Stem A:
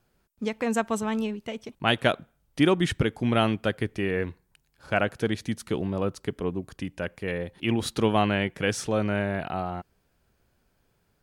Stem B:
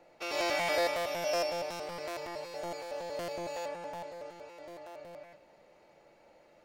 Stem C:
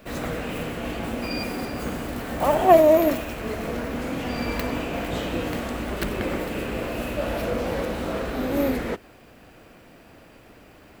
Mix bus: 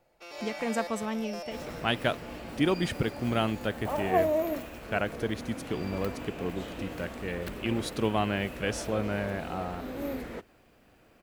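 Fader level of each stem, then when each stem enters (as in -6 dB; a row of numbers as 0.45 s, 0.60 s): -5.0 dB, -9.0 dB, -11.5 dB; 0.00 s, 0.00 s, 1.45 s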